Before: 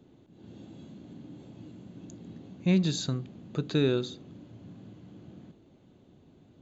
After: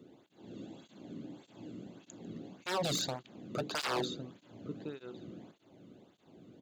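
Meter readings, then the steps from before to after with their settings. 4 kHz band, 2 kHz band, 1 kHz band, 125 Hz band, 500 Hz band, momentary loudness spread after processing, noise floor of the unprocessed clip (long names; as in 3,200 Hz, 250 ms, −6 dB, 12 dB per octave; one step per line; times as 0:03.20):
−0.5 dB, +0.5 dB, +9.5 dB, −13.0 dB, −6.0 dB, 24 LU, −59 dBFS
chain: slap from a distant wall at 190 metres, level −13 dB
wave folding −28 dBFS
through-zero flanger with one copy inverted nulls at 1.7 Hz, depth 1.3 ms
level +4 dB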